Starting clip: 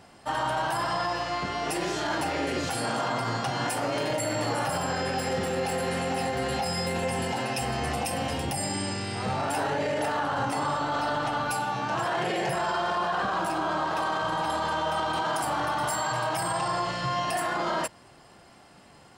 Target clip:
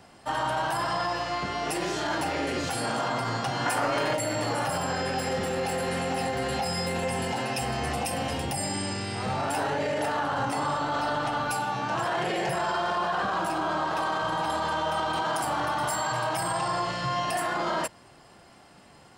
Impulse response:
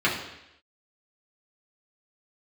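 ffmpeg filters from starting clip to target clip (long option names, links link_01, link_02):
-filter_complex "[0:a]asettb=1/sr,asplit=3[link_01][link_02][link_03];[link_01]atrim=end=3.664[link_04];[link_02]atrim=start=3.66:end=4.15,asetpts=PTS-STARTPTS,afade=type=in:duration=0.004:curve=qsin,afade=type=out:start_time=0.486:duration=0.004:curve=qsin,equalizer=frequency=1300:width_type=o:width=1.3:gain=7[link_05];[link_03]atrim=start=4.146[link_06];[link_04][link_05]acrossfade=duration=0.004:curve1=hsin:curve2=qsin[link_07];[link_07][link_06]acrossfade=duration=0.004:curve1=qsin:curve2=hsin,acrossover=split=610|3200[link_08][link_09][link_10];[link_08]volume=27dB,asoftclip=hard,volume=-27dB[link_11];[link_11][link_09][link_10]amix=inputs=3:normalize=0"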